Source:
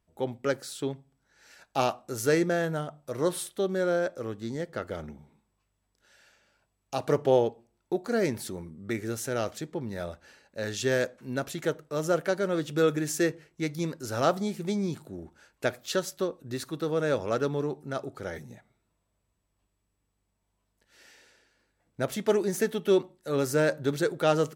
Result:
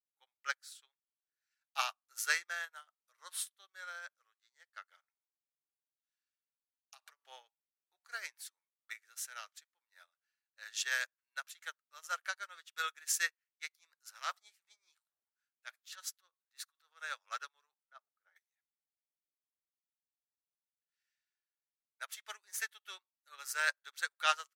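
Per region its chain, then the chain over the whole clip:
0:05.03–0:07.25: high-pass filter 170 Hz + downward compressor 10 to 1, threshold −33 dBFS + multiband upward and downward expander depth 40%
0:13.75–0:17.02: high-pass filter 120 Hz + transient designer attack −11 dB, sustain +1 dB
0:17.83–0:18.36: low-pass filter 1,000 Hz 6 dB per octave + multiband upward and downward expander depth 70%
whole clip: high-pass filter 1,200 Hz 24 dB per octave; expander for the loud parts 2.5 to 1, over −55 dBFS; level +4.5 dB

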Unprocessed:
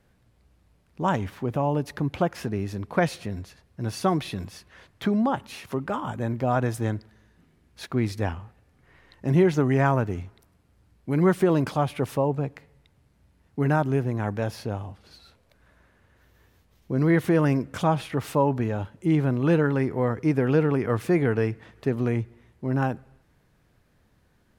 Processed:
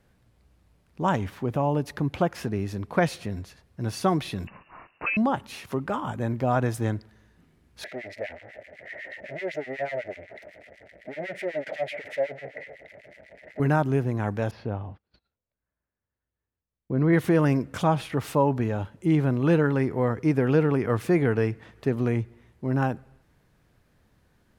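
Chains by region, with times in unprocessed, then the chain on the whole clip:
0:04.47–0:05.17: tilt shelving filter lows −7.5 dB, about 650 Hz + voice inversion scrambler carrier 2,800 Hz
0:07.84–0:13.60: power curve on the samples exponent 0.35 + pair of resonant band-passes 1,100 Hz, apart 1.7 octaves + two-band tremolo in antiphase 8 Hz, depth 100%, crossover 1,500 Hz
0:14.51–0:17.13: noise gate −50 dBFS, range −28 dB + high-frequency loss of the air 310 metres
whole clip: no processing

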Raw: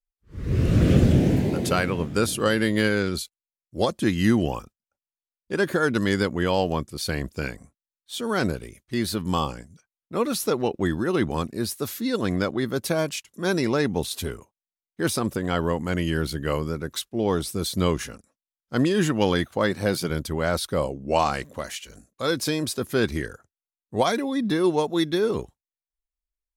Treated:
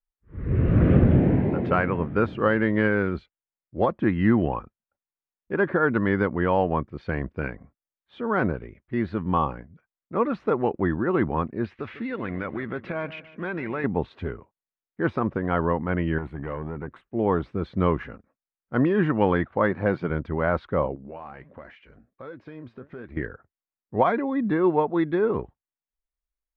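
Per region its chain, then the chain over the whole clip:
0:11.64–0:13.84: parametric band 2,500 Hz +11.5 dB 1.5 octaves + downward compressor 5 to 1, threshold −26 dBFS + repeating echo 149 ms, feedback 43%, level −15 dB
0:16.18–0:17.10: high shelf with overshoot 7,000 Hz +12 dB, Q 3 + downward compressor 10 to 1, threshold −24 dBFS + gain into a clipping stage and back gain 25.5 dB
0:20.95–0:23.17: flanger 1.4 Hz, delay 2.7 ms, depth 6.5 ms, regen +68% + downward compressor 4 to 1, threshold −37 dBFS
whole clip: low-pass filter 2,100 Hz 24 dB per octave; dynamic equaliser 1,000 Hz, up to +4 dB, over −38 dBFS, Q 1.9

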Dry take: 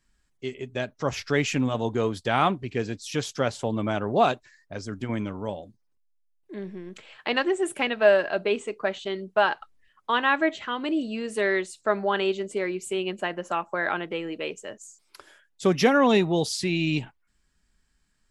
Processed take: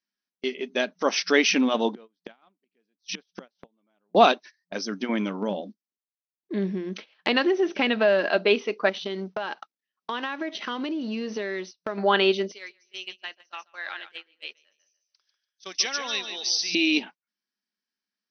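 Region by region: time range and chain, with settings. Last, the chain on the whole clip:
0:01.94–0:04.15: high-frequency loss of the air 100 metres + gate with flip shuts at −26 dBFS, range −27 dB
0:05.42–0:08.29: low-shelf EQ 270 Hz +11 dB + downward compressor 3 to 1, threshold −23 dBFS
0:08.89–0:11.98: mu-law and A-law mismatch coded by A + low-shelf EQ 480 Hz +7 dB + downward compressor 12 to 1, threshold −30 dBFS
0:12.52–0:16.75: first difference + repeating echo 145 ms, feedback 29%, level −7.5 dB
whole clip: brick-wall band-pass 180–6,200 Hz; noise gate −44 dBFS, range −21 dB; high-shelf EQ 3,700 Hz +11 dB; level +3.5 dB

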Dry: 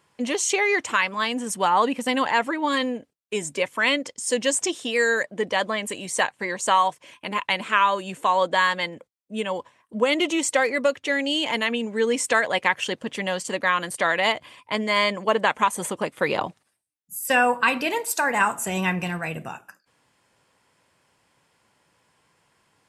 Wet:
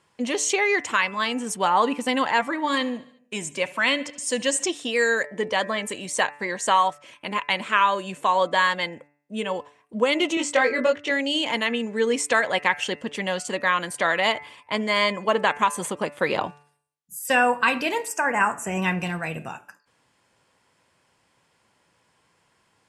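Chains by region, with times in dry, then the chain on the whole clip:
0:02.40–0:04.65: parametric band 430 Hz −12.5 dB 0.21 octaves + repeating echo 72 ms, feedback 58%, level −21 dB
0:10.35–0:11.11: high-frequency loss of the air 67 metres + double-tracking delay 20 ms −2.5 dB
0:18.08–0:18.82: Butterworth band-reject 3,900 Hz, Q 1.5 + high-shelf EQ 11,000 Hz −12 dB
whole clip: low-pass filter 11,000 Hz; hum removal 145.5 Hz, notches 19

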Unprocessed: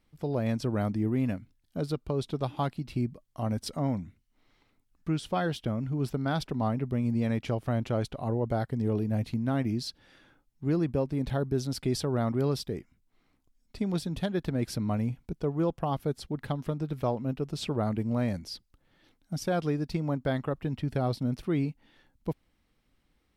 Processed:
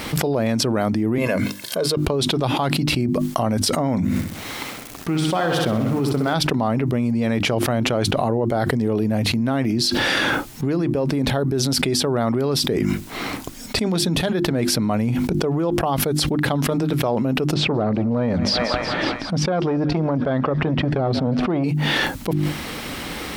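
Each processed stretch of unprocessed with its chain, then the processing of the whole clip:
0:01.18–0:01.97: high-pass filter 240 Hz + comb filter 1.9 ms, depth 66%
0:04.04–0:06.34: mu-law and A-law mismatch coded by A + repeating echo 64 ms, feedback 55%, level −6.5 dB
0:17.54–0:21.64: head-to-tape spacing loss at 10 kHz 28 dB + feedback echo with a high-pass in the loop 184 ms, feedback 79%, high-pass 640 Hz, level −22.5 dB + saturating transformer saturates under 300 Hz
whole clip: high-pass filter 230 Hz 6 dB per octave; mains-hum notches 50/100/150/200/250/300/350 Hz; envelope flattener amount 100%; level +6.5 dB

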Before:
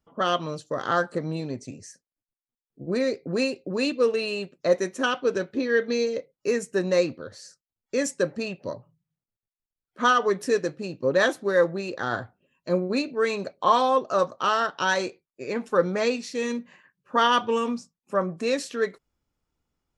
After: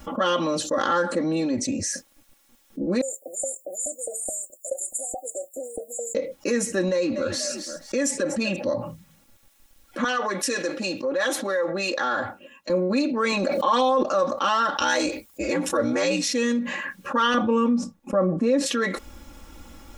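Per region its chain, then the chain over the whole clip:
0:03.01–0:06.15: first difference + auto-filter high-pass saw up 4.7 Hz 630–3,100 Hz + linear-phase brick-wall band-stop 770–6,800 Hz
0:06.88–0:08.56: echo with shifted repeats 243 ms, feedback 36%, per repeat +33 Hz, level −23.5 dB + downward compressor 2 to 1, threshold −30 dBFS
0:10.04–0:12.70: downward compressor 4 to 1, threshold −26 dBFS + high-pass filter 600 Hz 6 dB per octave + multiband upward and downward expander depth 70%
0:13.32–0:14.03: high-pass filter 160 Hz + level that may fall only so fast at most 21 dB per second
0:14.76–0:16.28: high-shelf EQ 6,700 Hz +11.5 dB + ring modulation 60 Hz
0:17.34–0:18.66: noise gate −46 dBFS, range −10 dB + tilt shelving filter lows +8.5 dB, about 1,400 Hz
whole clip: notch filter 4,600 Hz, Q 16; comb filter 3.6 ms, depth 98%; envelope flattener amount 70%; level −8.5 dB

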